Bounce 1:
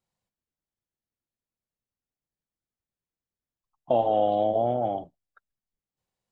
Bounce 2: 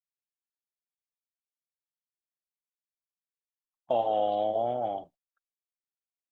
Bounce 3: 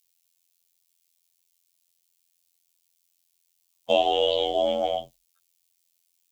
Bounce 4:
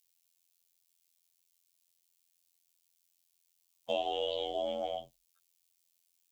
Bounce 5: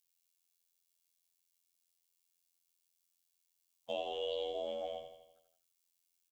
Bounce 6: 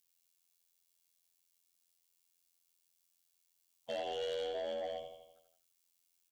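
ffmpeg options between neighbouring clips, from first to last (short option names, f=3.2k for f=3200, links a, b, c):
-af "agate=range=-21dB:threshold=-50dB:ratio=16:detection=peak,lowshelf=f=450:g=-11.5"
-af "afftfilt=real='hypot(re,im)*cos(PI*b)':imag='0':win_size=2048:overlap=0.75,aexciter=amount=3.2:drive=9.5:freq=2.3k,afreqshift=-35,volume=8.5dB"
-af "acompressor=threshold=-39dB:ratio=1.5,volume=-4dB"
-af "aecho=1:1:83|166|249|332|415|498|581:0.447|0.241|0.13|0.0703|0.038|0.0205|0.0111,volume=-6dB"
-af "asoftclip=type=tanh:threshold=-35.5dB,volume=3dB"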